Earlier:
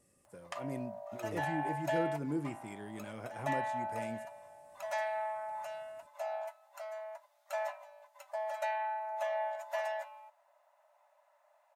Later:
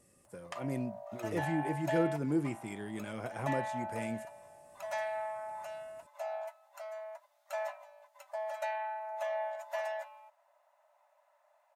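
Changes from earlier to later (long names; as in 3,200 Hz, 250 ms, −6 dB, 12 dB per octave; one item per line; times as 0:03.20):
first voice +5.0 dB
second voice +4.0 dB
reverb: off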